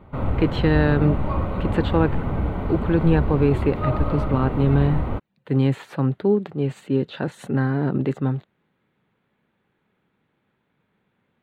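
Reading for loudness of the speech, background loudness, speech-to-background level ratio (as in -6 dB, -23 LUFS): -23.0 LUFS, -26.0 LUFS, 3.0 dB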